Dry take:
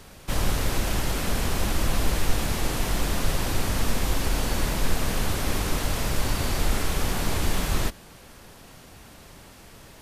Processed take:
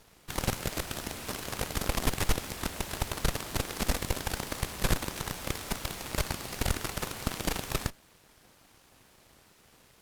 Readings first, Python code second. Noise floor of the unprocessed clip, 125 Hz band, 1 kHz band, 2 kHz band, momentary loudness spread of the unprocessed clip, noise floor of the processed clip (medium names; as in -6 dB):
-48 dBFS, -7.5 dB, -5.5 dB, -5.0 dB, 20 LU, -61 dBFS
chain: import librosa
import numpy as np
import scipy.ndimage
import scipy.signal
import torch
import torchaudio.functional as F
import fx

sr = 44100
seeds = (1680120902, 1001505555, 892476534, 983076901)

y = np.abs(x)
y = fx.cheby_harmonics(y, sr, harmonics=(7, 8), levels_db=(-13, -21), full_scale_db=-8.0)
y = y * 10.0 ** (-4.5 / 20.0)